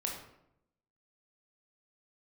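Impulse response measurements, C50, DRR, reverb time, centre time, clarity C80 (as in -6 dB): 4.0 dB, -1.0 dB, 0.80 s, 38 ms, 7.5 dB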